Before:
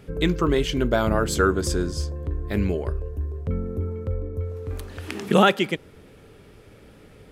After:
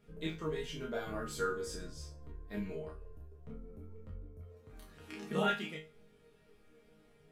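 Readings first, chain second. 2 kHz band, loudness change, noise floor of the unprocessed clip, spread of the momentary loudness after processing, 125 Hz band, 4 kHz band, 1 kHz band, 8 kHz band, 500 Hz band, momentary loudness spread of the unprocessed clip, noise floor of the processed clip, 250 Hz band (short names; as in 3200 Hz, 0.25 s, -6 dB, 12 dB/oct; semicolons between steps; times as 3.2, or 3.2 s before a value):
-14.0 dB, -15.5 dB, -49 dBFS, 20 LU, -20.0 dB, -15.0 dB, -15.0 dB, -15.5 dB, -15.5 dB, 13 LU, -65 dBFS, -17.5 dB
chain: chorus voices 2, 0.48 Hz, delay 28 ms, depth 4.6 ms; resonator bank D#3 sus4, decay 0.31 s; gain +3 dB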